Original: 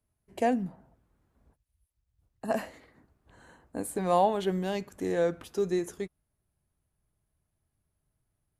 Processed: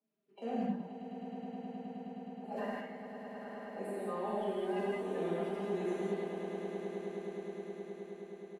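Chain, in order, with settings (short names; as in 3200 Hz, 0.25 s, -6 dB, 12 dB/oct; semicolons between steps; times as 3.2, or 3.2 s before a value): bin magnitudes rounded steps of 30 dB; HPF 190 Hz 24 dB/oct; three-band isolator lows -14 dB, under 290 Hz, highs -16 dB, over 3600 Hz; comb 5 ms, depth 64%; reverse; compressor 4:1, threshold -38 dBFS, peak gain reduction 17.5 dB; reverse; low shelf 320 Hz +9.5 dB; on a send: swelling echo 0.105 s, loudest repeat 8, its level -12.5 dB; on the sum: non-linear reverb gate 0.24 s flat, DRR -6.5 dB; gain -7.5 dB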